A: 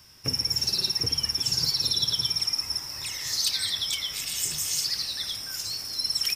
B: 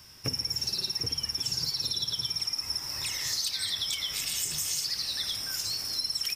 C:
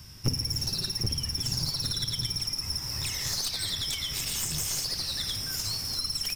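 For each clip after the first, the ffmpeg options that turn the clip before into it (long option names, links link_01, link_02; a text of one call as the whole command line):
ffmpeg -i in.wav -af "acompressor=threshold=-29dB:ratio=6,volume=1.5dB" out.wav
ffmpeg -i in.wav -af "bass=frequency=250:gain=13,treble=frequency=4000:gain=2,aeval=exprs='clip(val(0),-1,0.0282)':channel_layout=same" out.wav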